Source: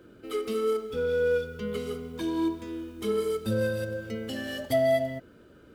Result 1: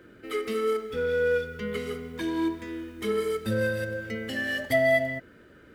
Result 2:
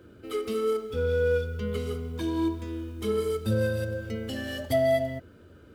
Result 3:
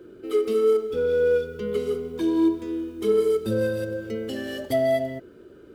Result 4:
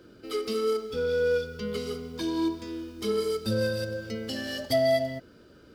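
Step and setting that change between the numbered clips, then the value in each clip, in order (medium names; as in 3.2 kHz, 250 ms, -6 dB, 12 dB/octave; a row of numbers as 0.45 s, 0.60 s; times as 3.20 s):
peaking EQ, frequency: 1.9 kHz, 85 Hz, 380 Hz, 4.9 kHz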